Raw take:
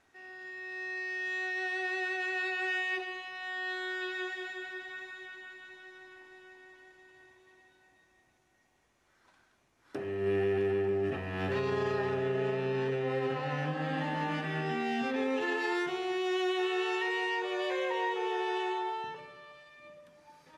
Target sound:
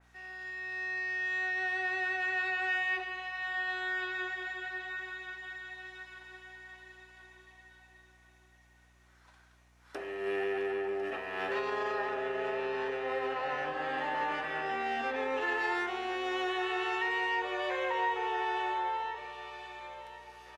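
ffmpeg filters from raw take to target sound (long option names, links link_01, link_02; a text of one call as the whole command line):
ffmpeg -i in.wav -filter_complex "[0:a]highpass=580,aeval=exprs='val(0)+0.000398*(sin(2*PI*60*n/s)+sin(2*PI*2*60*n/s)/2+sin(2*PI*3*60*n/s)/3+sin(2*PI*4*60*n/s)/4+sin(2*PI*5*60*n/s)/5)':channel_layout=same,asplit=2[link_01][link_02];[link_02]aecho=0:1:1052|2104|3156|4208:0.188|0.0735|0.0287|0.0112[link_03];[link_01][link_03]amix=inputs=2:normalize=0,adynamicequalizer=threshold=0.00398:dfrequency=2600:dqfactor=0.7:tfrequency=2600:tqfactor=0.7:attack=5:release=100:ratio=0.375:range=4:mode=cutabove:tftype=highshelf,volume=3.5dB" out.wav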